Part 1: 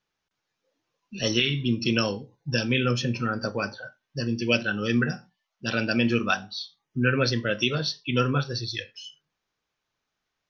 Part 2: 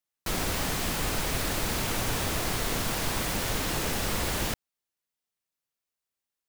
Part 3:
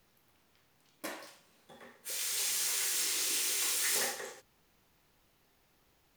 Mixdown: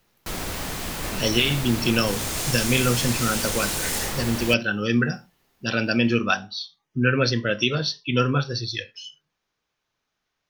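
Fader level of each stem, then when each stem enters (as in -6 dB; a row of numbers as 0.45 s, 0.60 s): +2.5 dB, -1.0 dB, +3.0 dB; 0.00 s, 0.00 s, 0.00 s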